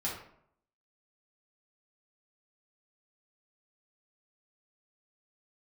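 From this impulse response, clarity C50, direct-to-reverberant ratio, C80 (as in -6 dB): 4.0 dB, -6.0 dB, 8.0 dB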